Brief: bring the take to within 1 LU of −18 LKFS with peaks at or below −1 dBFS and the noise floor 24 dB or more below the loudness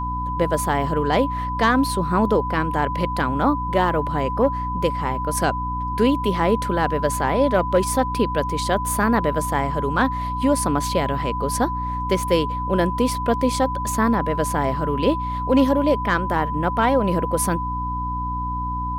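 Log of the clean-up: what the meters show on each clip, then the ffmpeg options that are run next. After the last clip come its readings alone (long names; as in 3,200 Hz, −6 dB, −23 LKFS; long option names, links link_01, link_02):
mains hum 60 Hz; hum harmonics up to 300 Hz; level of the hum −26 dBFS; interfering tone 1,000 Hz; level of the tone −25 dBFS; integrated loudness −21.5 LKFS; sample peak −7.0 dBFS; target loudness −18.0 LKFS
→ -af "bandreject=frequency=60:width_type=h:width=6,bandreject=frequency=120:width_type=h:width=6,bandreject=frequency=180:width_type=h:width=6,bandreject=frequency=240:width_type=h:width=6,bandreject=frequency=300:width_type=h:width=6"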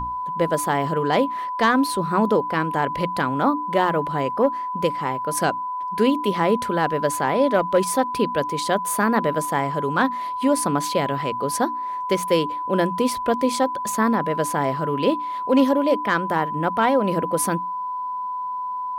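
mains hum none found; interfering tone 1,000 Hz; level of the tone −25 dBFS
→ -af "bandreject=frequency=1000:width=30"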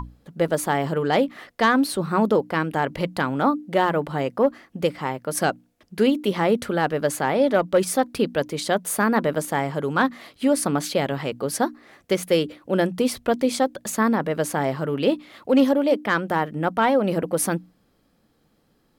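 interfering tone none found; integrated loudness −23.0 LKFS; sample peak −8.0 dBFS; target loudness −18.0 LKFS
→ -af "volume=5dB"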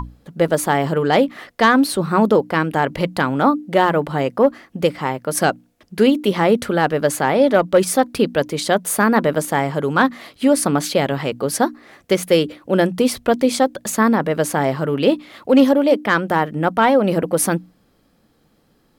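integrated loudness −18.0 LKFS; sample peak −3.0 dBFS; background noise floor −60 dBFS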